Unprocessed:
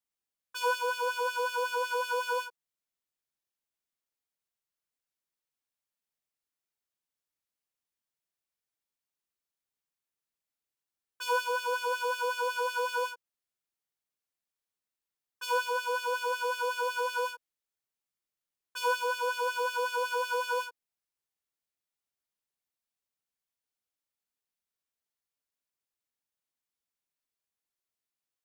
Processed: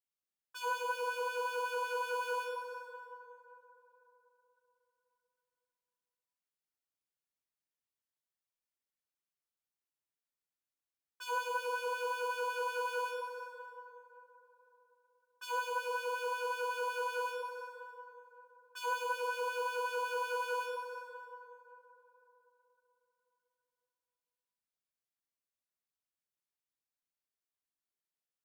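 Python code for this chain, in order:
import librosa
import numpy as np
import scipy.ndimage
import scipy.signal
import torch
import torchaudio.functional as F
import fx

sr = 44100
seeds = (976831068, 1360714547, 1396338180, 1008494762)

y = fx.rev_plate(x, sr, seeds[0], rt60_s=3.7, hf_ratio=0.45, predelay_ms=0, drr_db=1.0)
y = y * 10.0 ** (-8.5 / 20.0)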